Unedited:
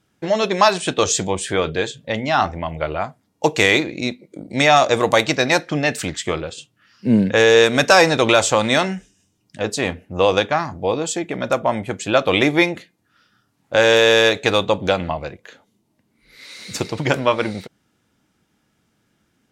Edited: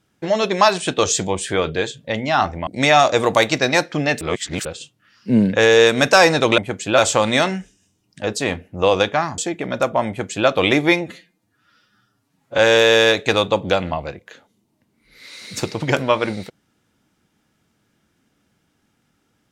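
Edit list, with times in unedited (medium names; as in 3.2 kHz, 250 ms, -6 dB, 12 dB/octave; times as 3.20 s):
2.67–4.44 s: delete
5.98–6.42 s: reverse
10.75–11.08 s: delete
11.78–12.18 s: copy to 8.35 s
12.71–13.76 s: stretch 1.5×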